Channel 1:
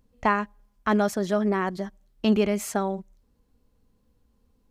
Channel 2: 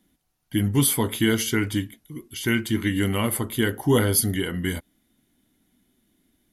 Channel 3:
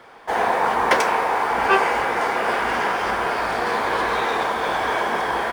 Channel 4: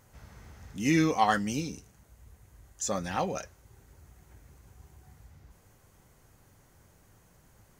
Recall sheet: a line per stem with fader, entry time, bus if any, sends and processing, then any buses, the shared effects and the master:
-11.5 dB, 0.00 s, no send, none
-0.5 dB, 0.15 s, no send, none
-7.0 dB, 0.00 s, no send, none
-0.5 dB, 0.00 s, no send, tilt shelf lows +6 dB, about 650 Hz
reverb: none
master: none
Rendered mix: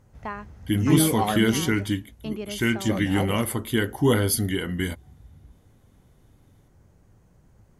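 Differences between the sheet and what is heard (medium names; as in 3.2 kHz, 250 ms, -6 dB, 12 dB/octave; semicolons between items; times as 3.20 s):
stem 3: muted; master: extra treble shelf 12 kHz -9 dB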